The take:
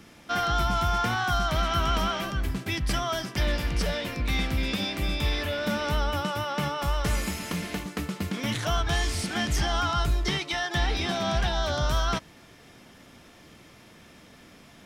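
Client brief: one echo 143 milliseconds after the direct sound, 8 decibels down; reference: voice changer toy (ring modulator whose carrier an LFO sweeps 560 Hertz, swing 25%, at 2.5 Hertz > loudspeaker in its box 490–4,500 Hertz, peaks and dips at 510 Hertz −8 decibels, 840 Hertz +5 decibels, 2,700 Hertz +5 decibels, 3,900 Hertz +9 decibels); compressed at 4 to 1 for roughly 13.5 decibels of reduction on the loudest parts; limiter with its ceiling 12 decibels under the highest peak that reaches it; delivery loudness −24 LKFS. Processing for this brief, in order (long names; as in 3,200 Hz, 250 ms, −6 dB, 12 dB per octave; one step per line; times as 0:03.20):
downward compressor 4 to 1, threshold −38 dBFS
brickwall limiter −34.5 dBFS
single-tap delay 143 ms −8 dB
ring modulator whose carrier an LFO sweeps 560 Hz, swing 25%, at 2.5 Hz
loudspeaker in its box 490–4,500 Hz, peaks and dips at 510 Hz −8 dB, 840 Hz +5 dB, 2,700 Hz +5 dB, 3,900 Hz +9 dB
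level +20.5 dB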